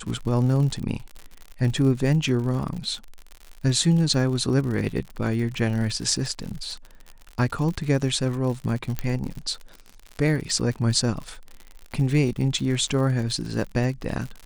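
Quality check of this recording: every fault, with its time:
crackle 73/s -31 dBFS
8.99 pop -12 dBFS

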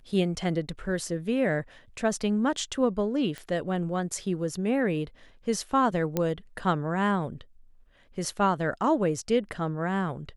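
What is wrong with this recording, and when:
3.38 pop -22 dBFS
6.17 pop -12 dBFS

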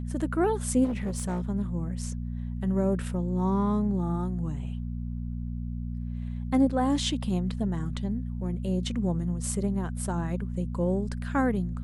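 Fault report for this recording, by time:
hum 60 Hz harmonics 4 -33 dBFS
0.84–1.42 clipped -25.5 dBFS

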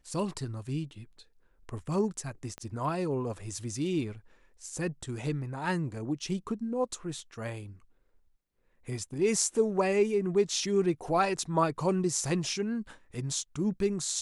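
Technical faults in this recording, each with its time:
2.58 pop -26 dBFS

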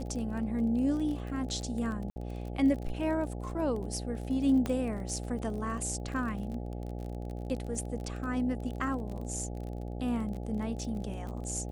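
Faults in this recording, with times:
buzz 60 Hz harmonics 14 -38 dBFS
crackle 30/s -38 dBFS
2.1–2.16 gap 60 ms
4.66 pop -19 dBFS

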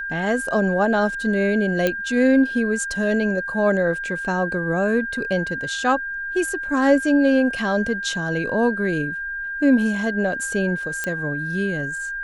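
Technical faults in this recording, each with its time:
tone 1600 Hz -26 dBFS
1.87 pop -7 dBFS
11.04 pop -11 dBFS

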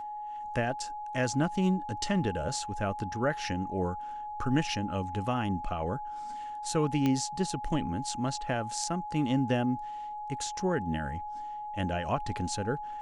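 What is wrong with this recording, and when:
tone 840 Hz -36 dBFS
7.06 pop -16 dBFS

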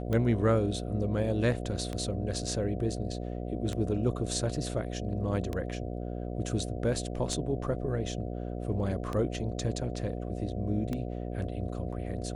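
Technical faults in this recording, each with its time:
buzz 60 Hz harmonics 12 -36 dBFS
tick 33 1/3 rpm -20 dBFS

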